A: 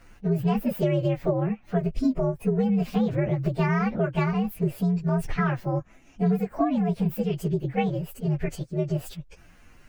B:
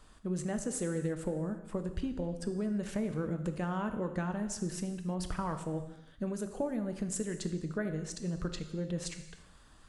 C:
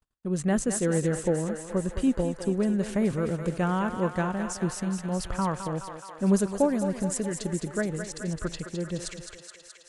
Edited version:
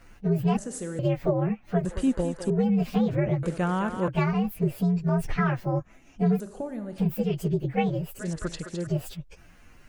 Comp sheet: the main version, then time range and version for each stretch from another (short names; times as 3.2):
A
0.57–0.99 from B
1.85–2.5 from C
3.43–4.08 from C
6.4–6.98 from B
8.19–8.87 from C